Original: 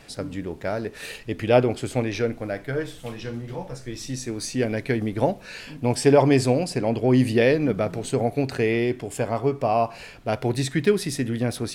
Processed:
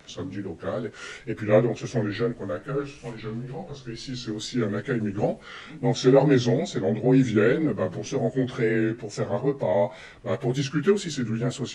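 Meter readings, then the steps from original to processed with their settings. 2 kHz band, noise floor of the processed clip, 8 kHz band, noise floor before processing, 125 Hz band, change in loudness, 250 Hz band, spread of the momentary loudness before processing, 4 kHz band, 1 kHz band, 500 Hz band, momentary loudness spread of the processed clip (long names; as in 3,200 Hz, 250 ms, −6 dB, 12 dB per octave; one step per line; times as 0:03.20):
−2.5 dB, −46 dBFS, −5.0 dB, −44 dBFS, −1.5 dB, −1.5 dB, −0.5 dB, 14 LU, −1.5 dB, −5.5 dB, −1.5 dB, 15 LU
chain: partials spread apart or drawn together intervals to 90%
tape wow and flutter 94 cents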